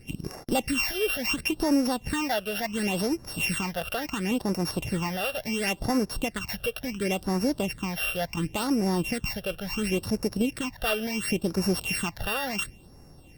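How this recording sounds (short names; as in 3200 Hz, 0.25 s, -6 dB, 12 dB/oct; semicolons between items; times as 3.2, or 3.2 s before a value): a buzz of ramps at a fixed pitch in blocks of 16 samples; phasing stages 8, 0.71 Hz, lowest notch 270–3100 Hz; Opus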